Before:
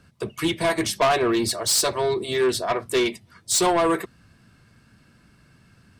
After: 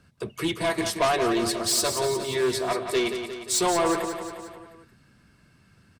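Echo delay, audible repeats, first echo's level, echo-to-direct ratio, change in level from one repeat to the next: 177 ms, 5, -8.0 dB, -6.5 dB, -5.0 dB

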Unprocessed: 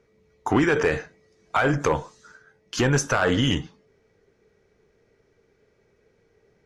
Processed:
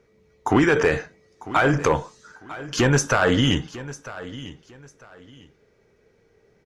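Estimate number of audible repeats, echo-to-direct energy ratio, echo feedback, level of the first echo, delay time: 2, -16.0 dB, 25%, -16.5 dB, 949 ms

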